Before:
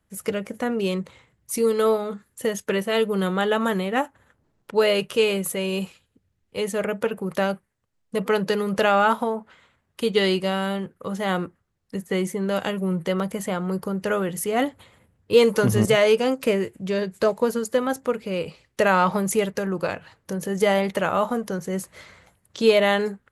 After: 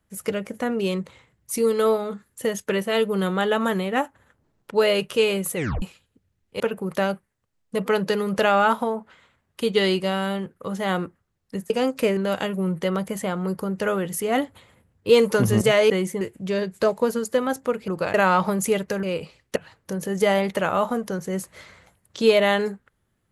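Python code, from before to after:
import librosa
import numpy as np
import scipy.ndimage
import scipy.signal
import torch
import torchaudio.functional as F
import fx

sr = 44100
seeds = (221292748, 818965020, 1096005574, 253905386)

y = fx.edit(x, sr, fx.tape_stop(start_s=5.56, length_s=0.26),
    fx.cut(start_s=6.6, length_s=0.4),
    fx.swap(start_s=12.1, length_s=0.31, other_s=16.14, other_length_s=0.47),
    fx.swap(start_s=18.28, length_s=0.53, other_s=19.7, other_length_s=0.26), tone=tone)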